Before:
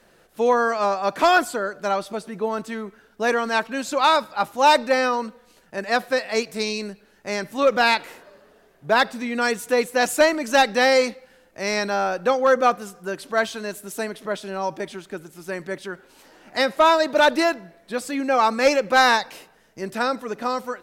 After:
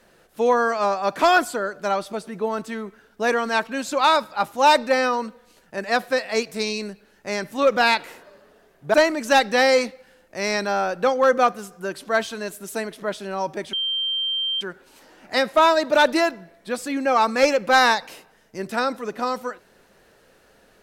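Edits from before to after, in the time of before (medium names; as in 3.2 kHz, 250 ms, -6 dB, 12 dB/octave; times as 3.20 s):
8.94–10.17 s: delete
14.96–15.84 s: bleep 3.15 kHz -21.5 dBFS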